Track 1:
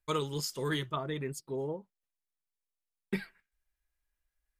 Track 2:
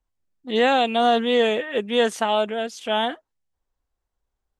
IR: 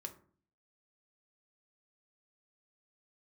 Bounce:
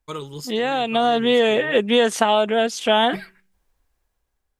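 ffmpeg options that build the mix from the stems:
-filter_complex "[0:a]volume=0dB,asplit=2[a][b];[b]volume=-22dB[c];[1:a]acompressor=threshold=-22dB:ratio=6,volume=1dB,asplit=2[d][e];[e]apad=whole_len=202428[f];[a][f]sidechaincompress=threshold=-40dB:ratio=3:attack=16:release=140[g];[2:a]atrim=start_sample=2205[h];[c][h]afir=irnorm=-1:irlink=0[i];[g][d][i]amix=inputs=3:normalize=0,dynaudnorm=f=280:g=7:m=10.5dB"

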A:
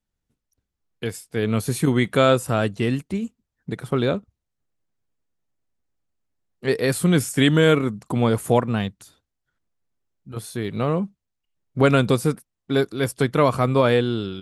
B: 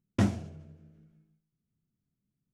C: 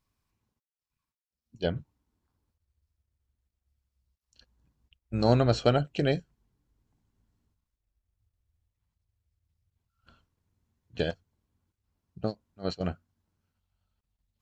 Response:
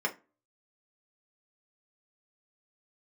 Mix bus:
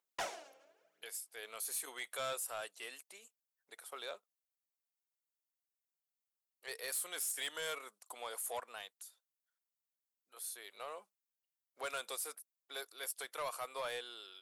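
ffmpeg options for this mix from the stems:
-filter_complex "[0:a]aemphasis=mode=production:type=75fm,volume=-17dB[a];[1:a]aphaser=in_gain=1:out_gain=1:delay=3.8:decay=0.62:speed=0.91:type=sinusoidal,volume=0dB[b];[a][b]amix=inputs=2:normalize=0,highpass=f=580:w=0.5412,highpass=f=580:w=1.3066,asoftclip=type=tanh:threshold=-33dB"

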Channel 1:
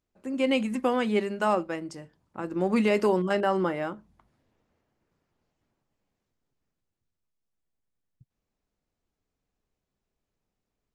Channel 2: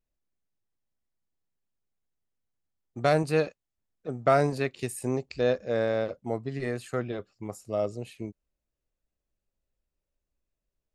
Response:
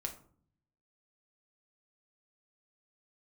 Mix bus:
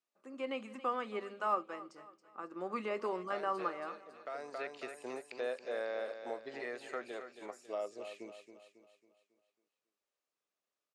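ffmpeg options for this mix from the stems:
-filter_complex "[0:a]equalizer=f=1.2k:w=6.8:g=14,volume=-12dB,asplit=3[a][b][c];[b]volume=-18dB[d];[1:a]highpass=f=660:p=1,acompressor=threshold=-40dB:ratio=2,volume=0.5dB,asplit=2[e][f];[f]volume=-9.5dB[g];[c]apad=whole_len=482591[h];[e][h]sidechaincompress=threshold=-55dB:ratio=8:attack=44:release=636[i];[d][g]amix=inputs=2:normalize=0,aecho=0:1:274|548|822|1096|1370|1644:1|0.45|0.202|0.0911|0.041|0.0185[j];[a][i][j]amix=inputs=3:normalize=0,acrossover=split=2800[k][l];[l]acompressor=threshold=-55dB:ratio=4:attack=1:release=60[m];[k][m]amix=inputs=2:normalize=0,highpass=350,lowpass=7.6k"

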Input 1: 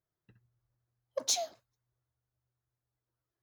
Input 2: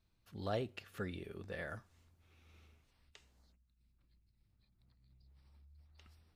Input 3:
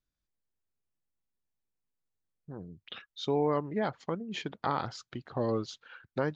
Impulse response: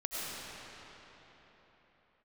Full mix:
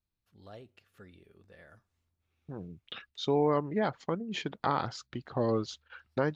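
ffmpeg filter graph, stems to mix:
-filter_complex "[1:a]volume=-11.5dB[a];[2:a]agate=range=-20dB:threshold=-51dB:ratio=16:detection=peak,volume=1.5dB[b];[a][b]amix=inputs=2:normalize=0"

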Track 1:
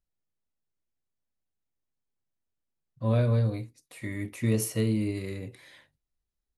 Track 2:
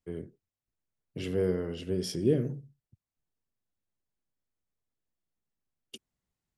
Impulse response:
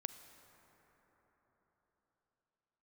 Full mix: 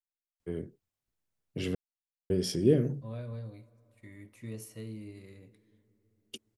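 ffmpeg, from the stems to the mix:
-filter_complex "[0:a]agate=range=-14dB:threshold=-46dB:ratio=16:detection=peak,volume=-19dB,asplit=2[a][b];[b]volume=-4dB[c];[1:a]adelay=400,volume=2dB,asplit=3[d][e][f];[d]atrim=end=1.75,asetpts=PTS-STARTPTS,afade=t=out:st=1.746:d=0.004:c=hsin[g];[e]atrim=start=1.75:end=2.3,asetpts=PTS-STARTPTS,volume=0[h];[f]atrim=start=2.3,asetpts=PTS-STARTPTS,afade=t=in:d=0.004:c=hsin[i];[g][h][i]concat=n=3:v=0:a=1[j];[2:a]atrim=start_sample=2205[k];[c][k]afir=irnorm=-1:irlink=0[l];[a][j][l]amix=inputs=3:normalize=0"

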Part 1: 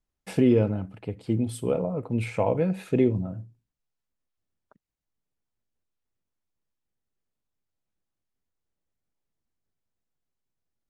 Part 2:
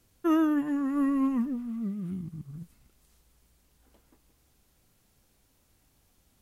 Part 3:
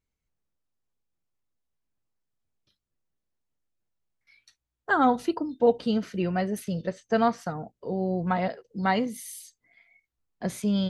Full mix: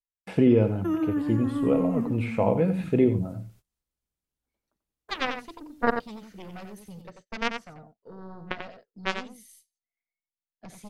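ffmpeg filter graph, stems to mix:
-filter_complex "[0:a]acrossover=split=3400[a][b];[b]acompressor=threshold=-58dB:ratio=4:attack=1:release=60[c];[a][c]amix=inputs=2:normalize=0,volume=0.5dB,asplit=2[d][e];[e]volume=-11.5dB[f];[1:a]acrossover=split=340[g][h];[h]acompressor=threshold=-35dB:ratio=6[i];[g][i]amix=inputs=2:normalize=0,adelay=600,volume=0dB,asplit=2[j][k];[k]volume=-7.5dB[l];[2:a]highpass=86,aeval=exprs='0.335*(cos(1*acos(clip(val(0)/0.335,-1,1)))-cos(1*PI/2))+0.15*(cos(3*acos(clip(val(0)/0.335,-1,1)))-cos(3*PI/2))+0.00944*(cos(5*acos(clip(val(0)/0.335,-1,1)))-cos(5*PI/2))+0.00335*(cos(6*acos(clip(val(0)/0.335,-1,1)))-cos(6*PI/2))':c=same,adelay=200,volume=2dB,asplit=2[m][n];[n]volume=-7.5dB[o];[f][l][o]amix=inputs=3:normalize=0,aecho=0:1:90:1[p];[d][j][m][p]amix=inputs=4:normalize=0,agate=range=-24dB:threshold=-52dB:ratio=16:detection=peak"

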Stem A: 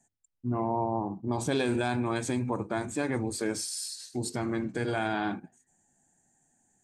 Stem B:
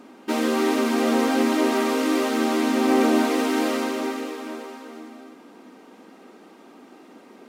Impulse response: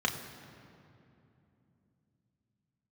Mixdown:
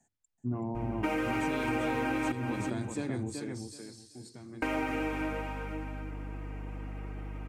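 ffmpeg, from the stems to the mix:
-filter_complex "[0:a]highshelf=f=8.8k:g=-11,acrossover=split=330|3000[a][b][c];[b]acompressor=threshold=-41dB:ratio=6[d];[a][d][c]amix=inputs=3:normalize=0,volume=-0.5dB,afade=t=out:st=3.12:d=0.52:silence=0.223872,asplit=2[e][f];[f]volume=-6dB[g];[1:a]highshelf=f=3.1k:t=q:w=3:g=-7,aecho=1:1:6.4:0.8,aeval=exprs='val(0)+0.0158*(sin(2*PI*50*n/s)+sin(2*PI*2*50*n/s)/2+sin(2*PI*3*50*n/s)/3+sin(2*PI*4*50*n/s)/4+sin(2*PI*5*50*n/s)/5)':c=same,adelay=750,volume=-4dB,asplit=3[h][i][j];[h]atrim=end=2.32,asetpts=PTS-STARTPTS,afade=t=out:st=2.316:d=0.004:c=hsin[k];[i]atrim=start=2.32:end=4.62,asetpts=PTS-STARTPTS,volume=0[l];[j]atrim=start=4.62,asetpts=PTS-STARTPTS,afade=t=in:d=0.004:c=hsin[m];[k][l][m]concat=n=3:v=0:a=1,asplit=2[n][o];[o]volume=-13dB[p];[g][p]amix=inputs=2:normalize=0,aecho=0:1:379|758|1137:1|0.2|0.04[q];[e][n][q]amix=inputs=3:normalize=0,acompressor=threshold=-27dB:ratio=12"

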